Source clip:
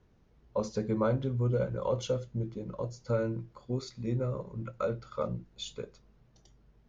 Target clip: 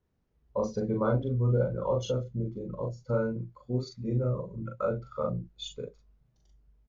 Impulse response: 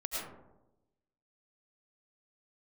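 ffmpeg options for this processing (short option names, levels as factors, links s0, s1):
-filter_complex "[0:a]asplit=2[s0][s1];[s1]adelay=40,volume=0.794[s2];[s0][s2]amix=inputs=2:normalize=0,afftdn=nr=13:nf=-41"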